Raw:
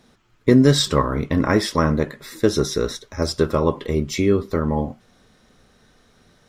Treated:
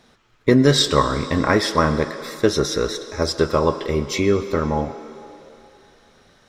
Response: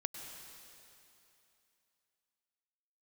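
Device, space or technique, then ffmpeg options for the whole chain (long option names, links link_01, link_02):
filtered reverb send: -filter_complex "[0:a]asplit=2[link_01][link_02];[link_02]highpass=380,lowpass=7500[link_03];[1:a]atrim=start_sample=2205[link_04];[link_03][link_04]afir=irnorm=-1:irlink=0,volume=-2dB[link_05];[link_01][link_05]amix=inputs=2:normalize=0,volume=-1dB"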